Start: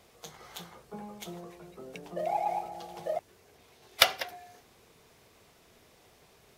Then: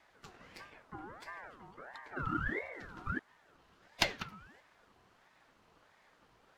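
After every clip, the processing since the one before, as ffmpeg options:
ffmpeg -i in.wav -af "afreqshift=28,aemphasis=mode=reproduction:type=75kf,aeval=exprs='val(0)*sin(2*PI*970*n/s+970*0.45/1.5*sin(2*PI*1.5*n/s))':channel_layout=same,volume=-1.5dB" out.wav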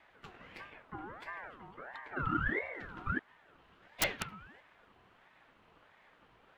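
ffmpeg -i in.wav -af "highshelf=frequency=4000:width_type=q:width=1.5:gain=-8.5,aeval=exprs='(mod(13.3*val(0)+1,2)-1)/13.3':channel_layout=same,volume=2dB" out.wav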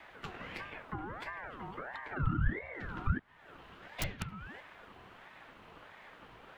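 ffmpeg -i in.wav -filter_complex "[0:a]acrossover=split=180[link_01][link_02];[link_02]acompressor=threshold=-50dB:ratio=5[link_03];[link_01][link_03]amix=inputs=2:normalize=0,volume=9.5dB" out.wav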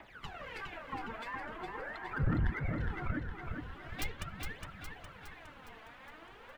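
ffmpeg -i in.wav -filter_complex "[0:a]aphaser=in_gain=1:out_gain=1:delay=4.6:decay=0.73:speed=0.43:type=triangular,asoftclip=type=tanh:threshold=-22.5dB,asplit=2[link_01][link_02];[link_02]aecho=0:1:412|824|1236|1648|2060|2472|2884:0.562|0.298|0.158|0.0837|0.0444|0.0235|0.0125[link_03];[link_01][link_03]amix=inputs=2:normalize=0,volume=-3.5dB" out.wav

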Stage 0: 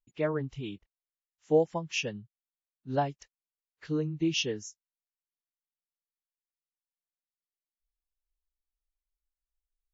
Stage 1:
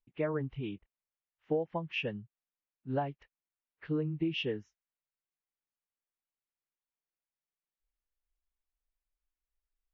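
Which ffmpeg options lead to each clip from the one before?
ffmpeg -i in.wav -af "lowpass=frequency=2800:width=0.5412,lowpass=frequency=2800:width=1.3066,acompressor=threshold=-28dB:ratio=6" out.wav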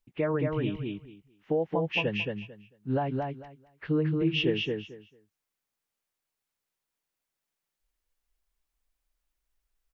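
ffmpeg -i in.wav -filter_complex "[0:a]alimiter=level_in=2dB:limit=-24dB:level=0:latency=1:release=94,volume=-2dB,asplit=2[link_01][link_02];[link_02]aecho=0:1:223|446|669:0.668|0.12|0.0217[link_03];[link_01][link_03]amix=inputs=2:normalize=0,volume=7dB" out.wav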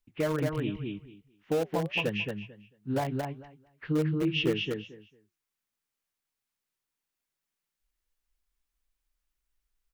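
ffmpeg -i in.wav -filter_complex "[0:a]flanger=delay=2.8:depth=4.9:regen=-82:speed=1.4:shape=triangular,acrossover=split=550|700[link_01][link_02][link_03];[link_02]acrusher=bits=6:mix=0:aa=0.000001[link_04];[link_01][link_04][link_03]amix=inputs=3:normalize=0,volume=3.5dB" out.wav

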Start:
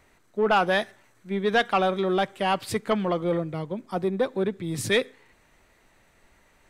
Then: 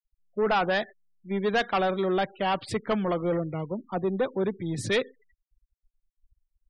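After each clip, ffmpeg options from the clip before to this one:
ffmpeg -i in.wav -af "highshelf=frequency=8600:gain=-11,asoftclip=type=tanh:threshold=-18dB,afftfilt=real='re*gte(hypot(re,im),0.00891)':imag='im*gte(hypot(re,im),0.00891)':win_size=1024:overlap=0.75" out.wav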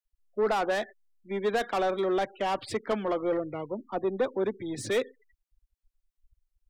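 ffmpeg -i in.wav -filter_complex "[0:a]equalizer=frequency=170:width_type=o:width=0.39:gain=-14,acrossover=split=160|770[link_01][link_02][link_03];[link_01]alimiter=level_in=18.5dB:limit=-24dB:level=0:latency=1:release=476,volume=-18.5dB[link_04];[link_03]asoftclip=type=tanh:threshold=-30.5dB[link_05];[link_04][link_02][link_05]amix=inputs=3:normalize=0" out.wav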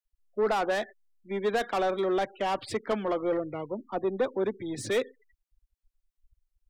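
ffmpeg -i in.wav -af anull out.wav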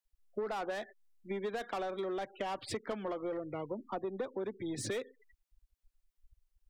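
ffmpeg -i in.wav -af "acompressor=threshold=-36dB:ratio=6,volume=1dB" out.wav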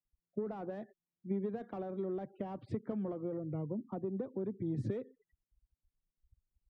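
ffmpeg -i in.wav -af "bandpass=frequency=150:width_type=q:width=1.6:csg=0,volume=10dB" out.wav

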